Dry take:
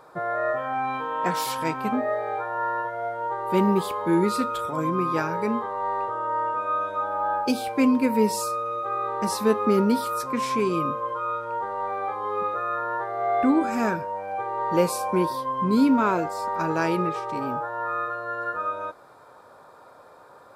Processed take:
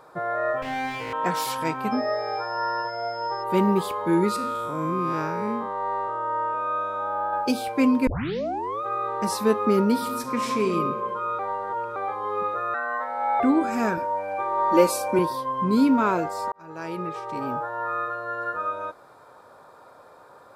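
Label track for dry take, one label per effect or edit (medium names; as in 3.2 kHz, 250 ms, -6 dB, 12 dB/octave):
0.620000	1.130000	comb filter that takes the minimum delay 0.33 ms
1.910000	3.420000	whistle 5.2 kHz -41 dBFS
4.360000	7.330000	spectral blur width 158 ms
8.070000	8.070000	tape start 0.75 s
9.910000	10.710000	reverb throw, RT60 1.4 s, DRR 6 dB
11.390000	11.960000	reverse
12.740000	13.400000	frequency shift +130 Hz
13.970000	15.190000	comb 3.4 ms, depth 96%
16.520000	17.530000	fade in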